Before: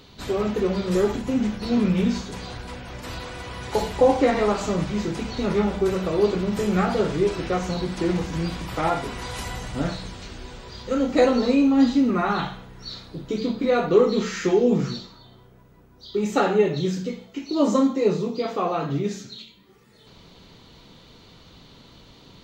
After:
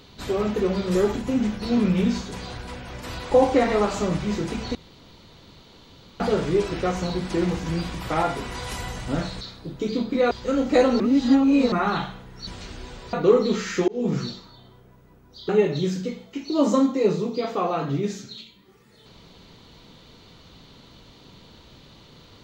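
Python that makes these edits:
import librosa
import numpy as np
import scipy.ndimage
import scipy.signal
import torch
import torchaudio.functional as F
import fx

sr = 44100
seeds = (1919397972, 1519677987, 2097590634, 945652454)

y = fx.edit(x, sr, fx.cut(start_s=3.31, length_s=0.67),
    fx.room_tone_fill(start_s=5.42, length_s=1.45),
    fx.swap(start_s=10.08, length_s=0.66, other_s=12.9, other_length_s=0.9),
    fx.reverse_span(start_s=11.43, length_s=0.72),
    fx.fade_in_span(start_s=14.55, length_s=0.28),
    fx.cut(start_s=16.16, length_s=0.34), tone=tone)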